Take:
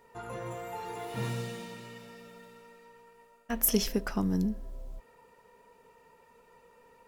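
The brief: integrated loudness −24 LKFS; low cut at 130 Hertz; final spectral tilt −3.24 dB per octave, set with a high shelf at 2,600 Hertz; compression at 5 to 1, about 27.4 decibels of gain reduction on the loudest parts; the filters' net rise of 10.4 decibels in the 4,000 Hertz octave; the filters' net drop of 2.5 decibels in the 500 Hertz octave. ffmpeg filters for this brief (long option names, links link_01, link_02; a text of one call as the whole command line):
ffmpeg -i in.wav -af "highpass=130,equalizer=frequency=500:width_type=o:gain=-3.5,highshelf=frequency=2600:gain=8,equalizer=frequency=4000:width_type=o:gain=6.5,acompressor=threshold=-47dB:ratio=5,volume=26dB" out.wav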